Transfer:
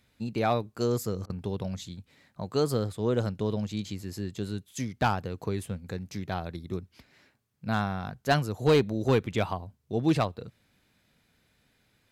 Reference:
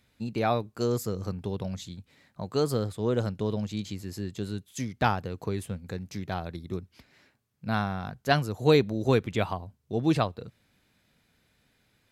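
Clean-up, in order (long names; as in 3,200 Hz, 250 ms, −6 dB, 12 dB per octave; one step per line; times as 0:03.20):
clipped peaks rebuilt −15.5 dBFS
repair the gap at 0:01.26, 36 ms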